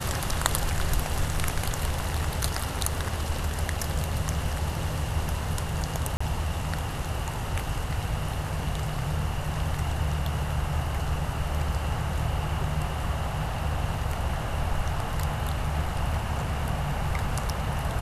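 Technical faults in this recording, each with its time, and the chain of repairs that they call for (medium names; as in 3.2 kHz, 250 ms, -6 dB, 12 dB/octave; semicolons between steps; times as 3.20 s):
6.17–6.21 s: dropout 35 ms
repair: interpolate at 6.17 s, 35 ms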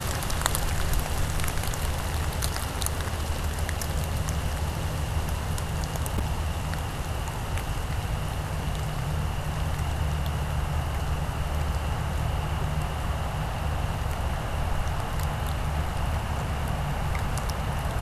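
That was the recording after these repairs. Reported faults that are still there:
nothing left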